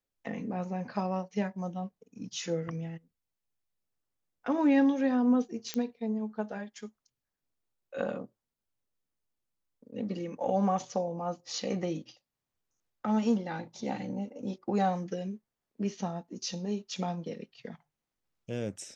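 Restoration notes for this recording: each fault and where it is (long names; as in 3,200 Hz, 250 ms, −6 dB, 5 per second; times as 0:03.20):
0:05.74: click −17 dBFS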